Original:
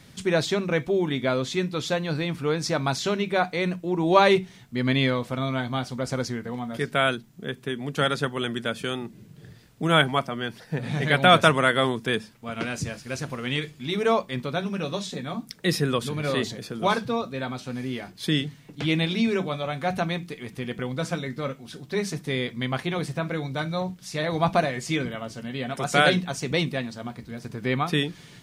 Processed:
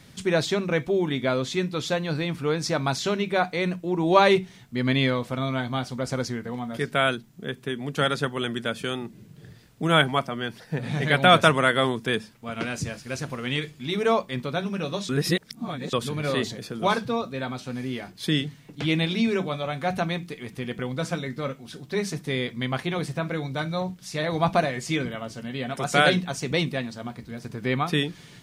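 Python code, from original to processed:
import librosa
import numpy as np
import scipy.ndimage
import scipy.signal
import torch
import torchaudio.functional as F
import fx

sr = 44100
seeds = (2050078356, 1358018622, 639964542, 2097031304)

y = fx.edit(x, sr, fx.reverse_span(start_s=15.09, length_s=0.84), tone=tone)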